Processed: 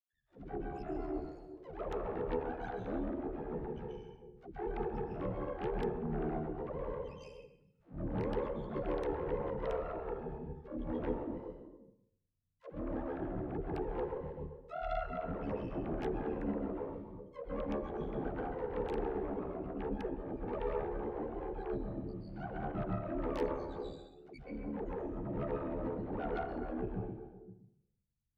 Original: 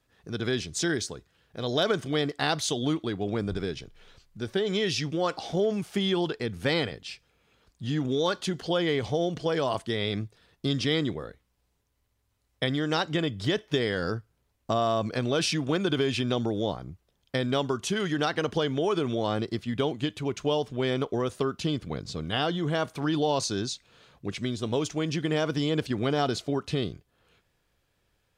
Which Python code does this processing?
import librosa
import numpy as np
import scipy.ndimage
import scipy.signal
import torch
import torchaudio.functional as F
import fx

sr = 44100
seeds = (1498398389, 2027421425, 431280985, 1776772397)

p1 = fx.spec_topn(x, sr, count=1)
p2 = np.maximum(p1, 0.0)
p3 = fx.rev_plate(p2, sr, seeds[0], rt60_s=0.7, hf_ratio=0.85, predelay_ms=115, drr_db=-3.0)
p4 = fx.env_lowpass_down(p3, sr, base_hz=1600.0, full_db=-35.5)
p5 = p4 * np.sin(2.0 * np.pi * 37.0 * np.arange(len(p4)) / sr)
p6 = fx.notch(p5, sr, hz=980.0, q=9.6)
p7 = p6 + fx.echo_stepped(p6, sr, ms=129, hz=2900.0, octaves=-1.4, feedback_pct=70, wet_db=-4.0, dry=0)
p8 = fx.cheby_harmonics(p7, sr, harmonics=(6, 8), levels_db=(-17, -29), full_scale_db=-25.0)
p9 = fx.dispersion(p8, sr, late='lows', ms=126.0, hz=320.0)
y = p9 * 10.0 ** (1.0 / 20.0)